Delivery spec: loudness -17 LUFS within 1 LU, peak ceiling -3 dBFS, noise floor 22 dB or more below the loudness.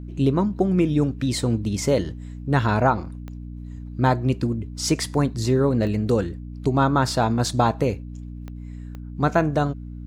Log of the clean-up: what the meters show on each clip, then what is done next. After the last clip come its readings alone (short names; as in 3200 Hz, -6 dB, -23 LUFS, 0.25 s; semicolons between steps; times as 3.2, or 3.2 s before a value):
clicks 4; hum 60 Hz; harmonics up to 300 Hz; hum level -34 dBFS; loudness -22.5 LUFS; peak -5.5 dBFS; loudness target -17.0 LUFS
-> de-click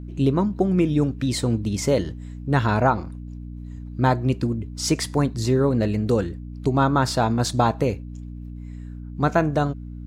clicks 0; hum 60 Hz; harmonics up to 300 Hz; hum level -34 dBFS
-> de-hum 60 Hz, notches 5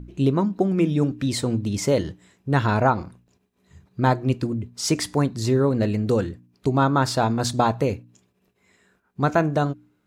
hum none; loudness -23.0 LUFS; peak -7.0 dBFS; loudness target -17.0 LUFS
-> gain +6 dB; limiter -3 dBFS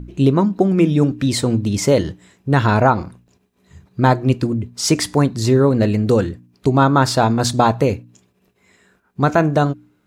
loudness -17.0 LUFS; peak -3.0 dBFS; noise floor -63 dBFS